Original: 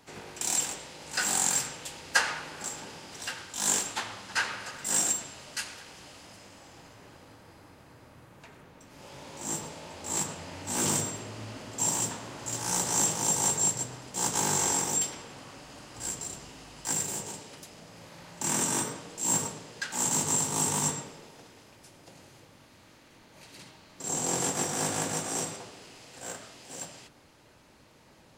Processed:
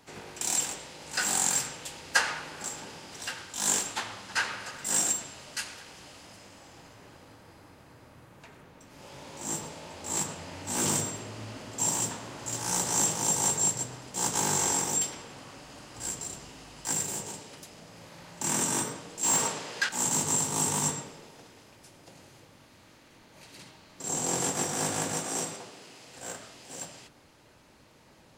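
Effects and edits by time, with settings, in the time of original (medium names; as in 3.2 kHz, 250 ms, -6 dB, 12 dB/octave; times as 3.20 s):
19.23–19.89 s: overdrive pedal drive 16 dB, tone 5.2 kHz, clips at -14 dBFS
25.17–26.07 s: high-pass 130 Hz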